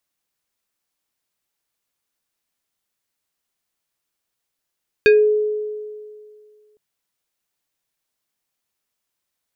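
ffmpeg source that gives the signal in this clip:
ffmpeg -f lavfi -i "aevalsrc='0.447*pow(10,-3*t/2.13)*sin(2*PI*424*t+0.96*pow(10,-3*t/0.26)*sin(2*PI*4.85*424*t))':duration=1.71:sample_rate=44100" out.wav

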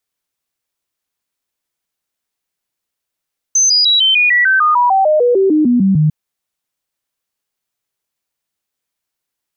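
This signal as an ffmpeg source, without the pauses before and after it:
ffmpeg -f lavfi -i "aevalsrc='0.398*clip(min(mod(t,0.15),0.15-mod(t,0.15))/0.005,0,1)*sin(2*PI*6180*pow(2,-floor(t/0.15)/3)*mod(t,0.15))':duration=2.55:sample_rate=44100" out.wav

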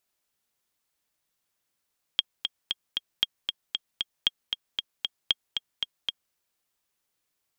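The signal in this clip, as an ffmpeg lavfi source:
ffmpeg -f lavfi -i "aevalsrc='pow(10,(-8-6*gte(mod(t,4*60/231),60/231))/20)*sin(2*PI*3250*mod(t,60/231))*exp(-6.91*mod(t,60/231)/0.03)':duration=4.15:sample_rate=44100" out.wav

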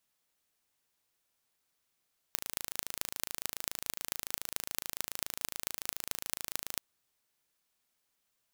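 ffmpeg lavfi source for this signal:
ffmpeg -f lavfi -i "aevalsrc='0.631*eq(mod(n,1627),0)*(0.5+0.5*eq(mod(n,9762),0))':duration=4.44:sample_rate=44100" out.wav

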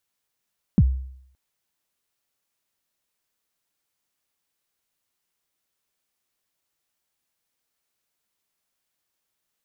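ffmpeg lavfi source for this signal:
ffmpeg -f lavfi -i "aevalsrc='0.335*pow(10,-3*t/0.68)*sin(2*PI*(240*0.047/log(65/240)*(exp(log(65/240)*min(t,0.047)/0.047)-1)+65*max(t-0.047,0)))':duration=0.57:sample_rate=44100" out.wav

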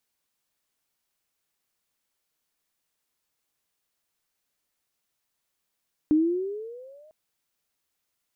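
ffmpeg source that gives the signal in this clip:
ffmpeg -f lavfi -i "aevalsrc='pow(10,(-15.5-35*t/1)/20)*sin(2*PI*299*1/(13*log(2)/12)*(exp(13*log(2)/12*t/1)-1))':duration=1:sample_rate=44100" out.wav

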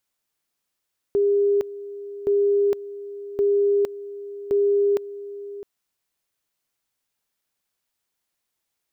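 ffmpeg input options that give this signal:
ffmpeg -f lavfi -i "aevalsrc='pow(10,(-16-16*gte(mod(t,1.12),0.46))/20)*sin(2*PI*404*t)':duration=4.48:sample_rate=44100" out.wav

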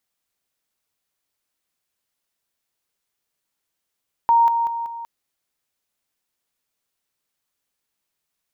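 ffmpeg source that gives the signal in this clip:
ffmpeg -f lavfi -i "aevalsrc='pow(10,(-11.5-6*floor(t/0.19))/20)*sin(2*PI*930*t)':duration=0.76:sample_rate=44100" out.wav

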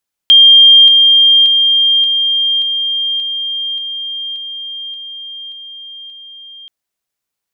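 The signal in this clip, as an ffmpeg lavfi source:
ffmpeg -f lavfi -i "aevalsrc='pow(10,(-1.5-3*floor(t/0.58))/20)*sin(2*PI*3200*t)':duration=6.38:sample_rate=44100" out.wav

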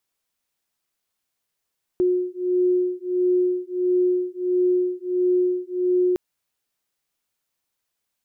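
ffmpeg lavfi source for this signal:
ffmpeg -f lavfi -i "aevalsrc='0.0841*(sin(2*PI*361*t)+sin(2*PI*362.5*t))':duration=4.16:sample_rate=44100" out.wav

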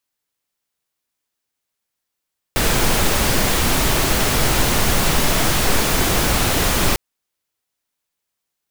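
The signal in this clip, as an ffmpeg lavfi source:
ffmpeg -f lavfi -i "anoisesrc=color=pink:amplitude=0.767:duration=4.4:sample_rate=44100:seed=1" out.wav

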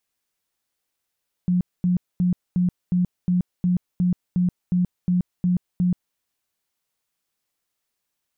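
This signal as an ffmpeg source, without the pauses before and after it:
ffmpeg -f lavfi -i "aevalsrc='0.15*sin(2*PI*179*mod(t,0.36))*lt(mod(t,0.36),23/179)':duration=4.68:sample_rate=44100" out.wav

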